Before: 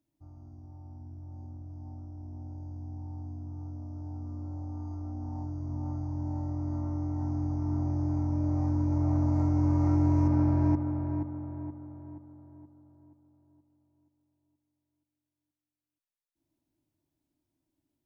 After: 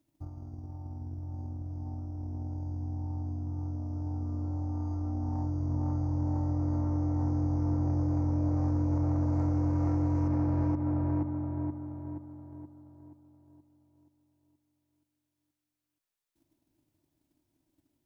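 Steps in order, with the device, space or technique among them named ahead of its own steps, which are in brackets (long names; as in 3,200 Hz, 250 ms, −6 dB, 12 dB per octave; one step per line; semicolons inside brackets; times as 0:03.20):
drum-bus smash (transient designer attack +8 dB, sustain 0 dB; downward compressor, threshold −26 dBFS, peak gain reduction 7.5 dB; soft clipping −26.5 dBFS, distortion −15 dB)
level +4.5 dB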